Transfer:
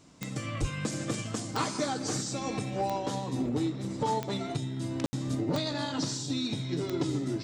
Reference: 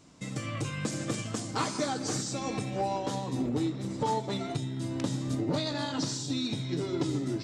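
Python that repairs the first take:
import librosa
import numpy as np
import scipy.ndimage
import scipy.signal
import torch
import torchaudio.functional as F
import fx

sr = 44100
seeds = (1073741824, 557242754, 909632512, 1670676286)

y = fx.fix_declick_ar(x, sr, threshold=10.0)
y = fx.highpass(y, sr, hz=140.0, slope=24, at=(0.6, 0.72), fade=0.02)
y = fx.fix_ambience(y, sr, seeds[0], print_start_s=0.0, print_end_s=0.5, start_s=5.06, end_s=5.13)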